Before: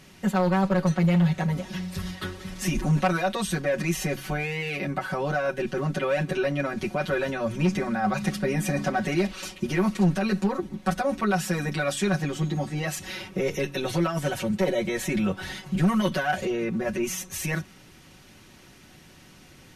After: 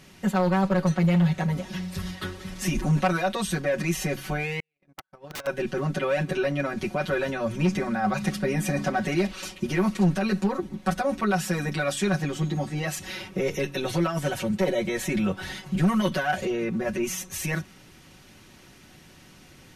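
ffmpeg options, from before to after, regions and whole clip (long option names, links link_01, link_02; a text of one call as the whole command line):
ffmpeg -i in.wav -filter_complex "[0:a]asettb=1/sr,asplit=3[link_01][link_02][link_03];[link_01]atrim=end=4.604[link_04];[link_02]atrim=start=4.6:end=5.47,asetpts=PTS-STARTPTS,afade=type=in:duration=0.004:curve=qsin,afade=type=out:start_time=0.866:duration=0.004:curve=qsin,agate=range=-55dB:threshold=-25dB:ratio=16:release=100:detection=peak,aeval=exprs='(mod(29.9*val(0)+1,2)-1)/29.9':channel_layout=same[link_05];[link_03]atrim=start=5.466[link_06];[link_04][link_05]acrossfade=duration=0.004:curve1=hsin:curve2=qsin[link_07];[link_07][link_06]acrossfade=duration=0.004:curve1=qsin:curve2=hsin" out.wav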